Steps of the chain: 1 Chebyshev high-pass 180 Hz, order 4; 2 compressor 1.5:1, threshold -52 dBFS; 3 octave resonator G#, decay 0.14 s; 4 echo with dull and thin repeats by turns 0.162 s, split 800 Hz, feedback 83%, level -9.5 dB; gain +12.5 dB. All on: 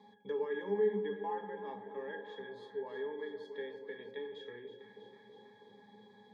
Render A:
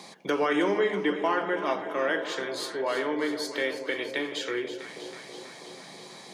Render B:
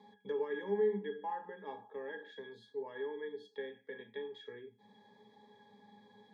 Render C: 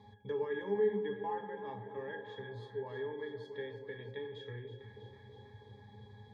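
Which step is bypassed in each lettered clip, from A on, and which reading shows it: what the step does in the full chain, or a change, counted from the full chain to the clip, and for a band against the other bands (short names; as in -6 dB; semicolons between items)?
3, 125 Hz band -7.0 dB; 4, echo-to-direct -8.0 dB to none; 1, 125 Hz band +8.5 dB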